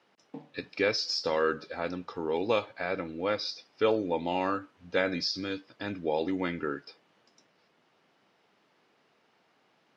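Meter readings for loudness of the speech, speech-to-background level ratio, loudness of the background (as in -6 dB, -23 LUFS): -31.0 LUFS, 18.0 dB, -49.0 LUFS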